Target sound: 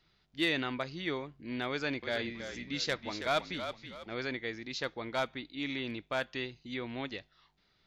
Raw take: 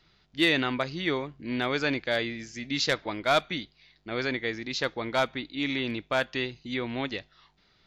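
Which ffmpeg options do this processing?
-filter_complex "[0:a]asettb=1/sr,asplit=3[a][b][c];[a]atrim=end=1.704[d];[b]atrim=start=1.7:end=4.14,asetpts=PTS-STARTPTS,afade=t=in:d=0.004:c=qsin,afade=t=out:st=2.436:d=0.004:c=qsin,asplit=5[e][f][g][h][i];[f]adelay=324,afreqshift=-44,volume=-9dB[j];[g]adelay=648,afreqshift=-88,volume=-17.9dB[k];[h]adelay=972,afreqshift=-132,volume=-26.7dB[l];[i]adelay=1296,afreqshift=-176,volume=-35.6dB[m];[e][j][k][l][m]amix=inputs=5:normalize=0,atrim=end_sample=107604[n];[c]atrim=start=4.136[o];[d][n]acrossfade=d=0.004:c1=hsin:c2=qsin[p];[p][o]acrossfade=d=0.004:c1=qsin:c2=hsin,volume=-7dB"

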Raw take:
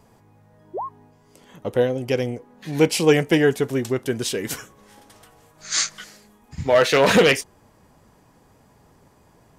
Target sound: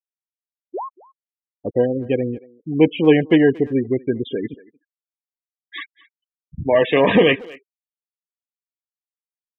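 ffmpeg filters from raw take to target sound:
-filter_complex "[0:a]asuperstop=centerf=1400:order=20:qfactor=4.2,aresample=8000,aresample=44100,acrusher=bits=7:dc=4:mix=0:aa=0.000001,equalizer=f=290:t=o:w=0.71:g=6.5,afftfilt=real='re*gte(hypot(re,im),0.0794)':imag='im*gte(hypot(re,im),0.0794)':win_size=1024:overlap=0.75,asplit=2[a][b];[b]adelay=230,highpass=300,lowpass=3.4k,asoftclip=type=hard:threshold=-10dB,volume=-21dB[c];[a][c]amix=inputs=2:normalize=0"

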